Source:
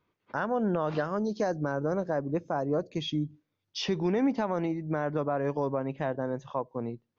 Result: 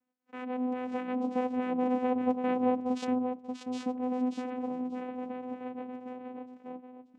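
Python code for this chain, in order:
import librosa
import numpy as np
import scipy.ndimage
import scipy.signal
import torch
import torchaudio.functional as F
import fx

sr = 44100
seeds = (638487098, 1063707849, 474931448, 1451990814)

y = fx.tape_stop_end(x, sr, length_s=0.85)
y = fx.doppler_pass(y, sr, speed_mps=14, closest_m=12.0, pass_at_s=2.28)
y = fx.echo_feedback(y, sr, ms=585, feedback_pct=16, wet_db=-5.5)
y = fx.vocoder(y, sr, bands=4, carrier='saw', carrier_hz=252.0)
y = y * 10.0 ** (2.0 / 20.0)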